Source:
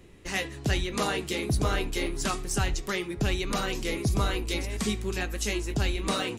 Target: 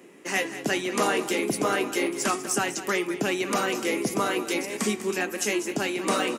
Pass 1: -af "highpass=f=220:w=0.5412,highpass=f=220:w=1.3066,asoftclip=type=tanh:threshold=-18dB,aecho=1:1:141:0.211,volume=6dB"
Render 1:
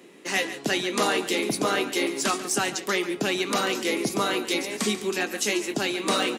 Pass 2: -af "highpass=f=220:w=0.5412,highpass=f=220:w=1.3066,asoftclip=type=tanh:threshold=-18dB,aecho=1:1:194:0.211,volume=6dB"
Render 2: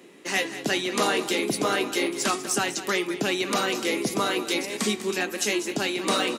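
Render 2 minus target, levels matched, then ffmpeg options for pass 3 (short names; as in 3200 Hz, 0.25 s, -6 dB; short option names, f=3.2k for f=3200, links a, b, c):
4000 Hz band +4.0 dB
-af "highpass=f=220:w=0.5412,highpass=f=220:w=1.3066,equalizer=f=3.9k:w=2.3:g=-9,asoftclip=type=tanh:threshold=-18dB,aecho=1:1:194:0.211,volume=6dB"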